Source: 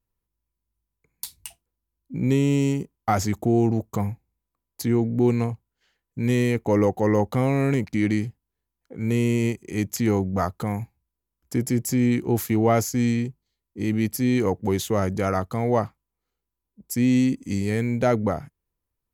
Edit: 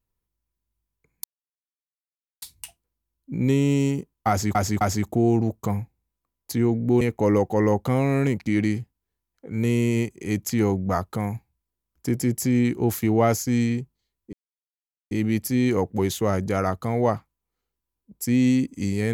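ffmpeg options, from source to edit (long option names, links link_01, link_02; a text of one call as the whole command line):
ffmpeg -i in.wav -filter_complex "[0:a]asplit=6[link_01][link_02][link_03][link_04][link_05][link_06];[link_01]atrim=end=1.24,asetpts=PTS-STARTPTS,afade=type=out:start_time=1.236:duration=0.004:curve=hsin,apad=pad_dur=1.18[link_07];[link_02]atrim=start=1.24:end=3.372,asetpts=PTS-STARTPTS,afade=type=in:duration=0.004:curve=hsin[link_08];[link_03]atrim=start=3.108:end=3.372[link_09];[link_04]atrim=start=3.108:end=5.312[link_10];[link_05]atrim=start=6.478:end=13.8,asetpts=PTS-STARTPTS,afade=type=out:start_time=7.318:duration=0.004:curve=hsin,apad=pad_dur=0.78[link_11];[link_06]atrim=start=13.8,asetpts=PTS-STARTPTS,afade=type=in:duration=0.004:curve=hsin[link_12];[link_07][link_08]concat=n=2:v=0:a=1[link_13];[link_13][link_09]acrossfade=duration=0.004:curve1=hsin:curve2=hsin[link_14];[link_14][link_10]acrossfade=duration=0.004:curve1=hsin:curve2=hsin[link_15];[link_11][link_12]concat=n=2:v=0:a=1[link_16];[link_15][link_16]acrossfade=duration=0.004:curve1=hsin:curve2=hsin" out.wav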